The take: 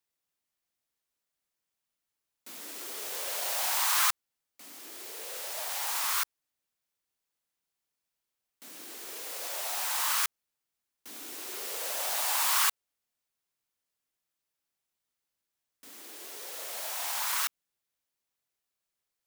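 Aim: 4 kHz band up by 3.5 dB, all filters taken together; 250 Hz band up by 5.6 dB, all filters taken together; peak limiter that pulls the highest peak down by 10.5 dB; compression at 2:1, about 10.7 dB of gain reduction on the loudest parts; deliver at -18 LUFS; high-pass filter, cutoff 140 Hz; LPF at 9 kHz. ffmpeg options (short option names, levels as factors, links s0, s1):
-af "highpass=140,lowpass=9000,equalizer=f=250:t=o:g=8,equalizer=f=4000:t=o:g=4.5,acompressor=threshold=0.00708:ratio=2,volume=18.8,alimiter=limit=0.335:level=0:latency=1"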